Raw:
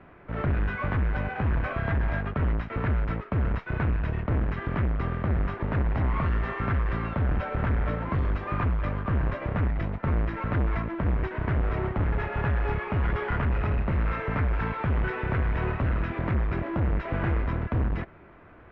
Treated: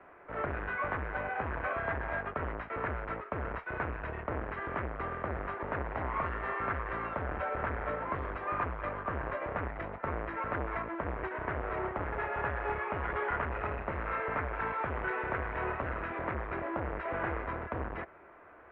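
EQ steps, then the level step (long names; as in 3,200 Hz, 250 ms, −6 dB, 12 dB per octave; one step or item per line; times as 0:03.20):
three-way crossover with the lows and the highs turned down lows −18 dB, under 370 Hz, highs −18 dB, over 2,500 Hz
parametric band 72 Hz +5.5 dB 0.53 octaves
0.0 dB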